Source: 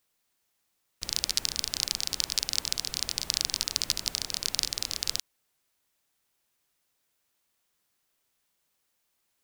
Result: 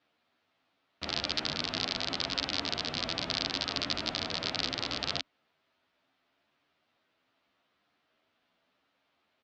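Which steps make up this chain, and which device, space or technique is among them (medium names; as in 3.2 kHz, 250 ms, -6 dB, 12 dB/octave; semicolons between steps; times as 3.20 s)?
barber-pole flanger into a guitar amplifier (endless flanger 10.9 ms +0.76 Hz; saturation -14 dBFS, distortion -15 dB; cabinet simulation 81–3800 Hz, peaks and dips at 270 Hz +8 dB, 660 Hz +7 dB, 1.3 kHz +4 dB); trim +9 dB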